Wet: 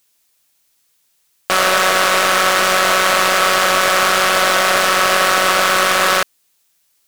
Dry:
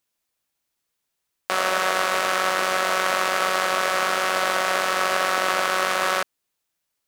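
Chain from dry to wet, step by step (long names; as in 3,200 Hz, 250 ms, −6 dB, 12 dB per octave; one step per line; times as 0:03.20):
high-shelf EQ 2,400 Hz +9 dB
soft clipping −13 dBFS, distortion −8 dB
level +9 dB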